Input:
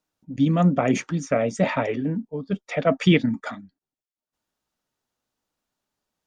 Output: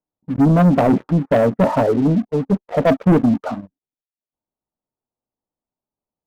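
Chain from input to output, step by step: LPF 1000 Hz 24 dB/oct; sample leveller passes 3

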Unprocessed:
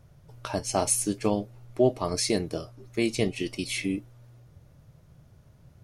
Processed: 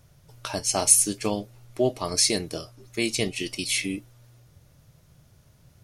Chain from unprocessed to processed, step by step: high shelf 2100 Hz +11 dB; gain -2 dB

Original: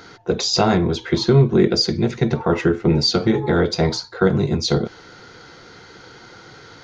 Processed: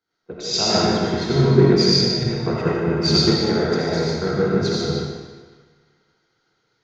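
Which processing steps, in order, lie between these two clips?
thinning echo 0.15 s, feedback 60%, level -8.5 dB; digital reverb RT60 2.5 s, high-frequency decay 0.85×, pre-delay 35 ms, DRR -6 dB; three-band expander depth 100%; gain -8 dB

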